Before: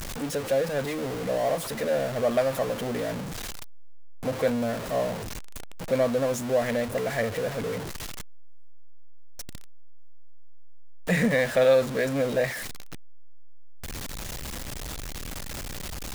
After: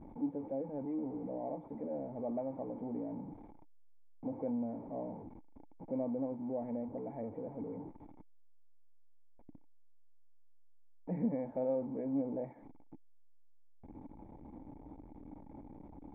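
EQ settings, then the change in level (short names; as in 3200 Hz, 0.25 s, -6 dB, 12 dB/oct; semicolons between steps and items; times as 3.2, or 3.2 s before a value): vocal tract filter u; low shelf 190 Hz -8.5 dB; bell 360 Hz -6.5 dB 0.45 oct; +3.5 dB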